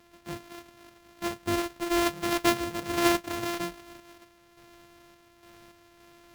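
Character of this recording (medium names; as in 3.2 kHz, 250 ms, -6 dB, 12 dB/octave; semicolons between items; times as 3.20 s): a buzz of ramps at a fixed pitch in blocks of 128 samples; random-step tremolo; aliases and images of a low sample rate 8.7 kHz, jitter 20%; Vorbis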